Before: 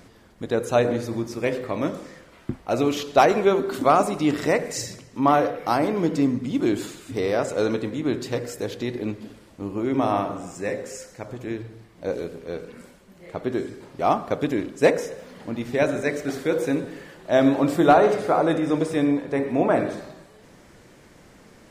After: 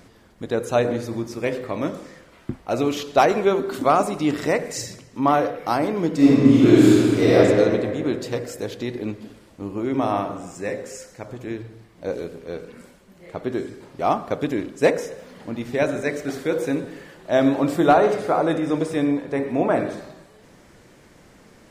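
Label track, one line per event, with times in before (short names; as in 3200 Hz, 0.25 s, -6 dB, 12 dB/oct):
6.160000	7.350000	reverb throw, RT60 2.3 s, DRR -10 dB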